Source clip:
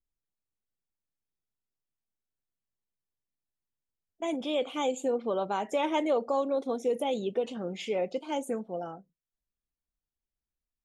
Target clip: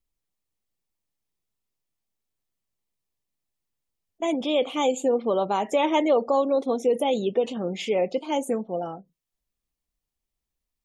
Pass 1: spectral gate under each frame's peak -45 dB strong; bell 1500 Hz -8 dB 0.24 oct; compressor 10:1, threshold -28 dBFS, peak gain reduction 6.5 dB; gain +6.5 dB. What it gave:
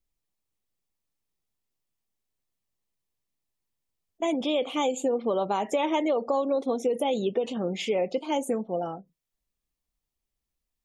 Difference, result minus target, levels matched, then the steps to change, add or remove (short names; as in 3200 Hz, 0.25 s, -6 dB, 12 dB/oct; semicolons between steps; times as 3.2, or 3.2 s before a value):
compressor: peak gain reduction +6.5 dB
remove: compressor 10:1, threshold -28 dBFS, peak gain reduction 6.5 dB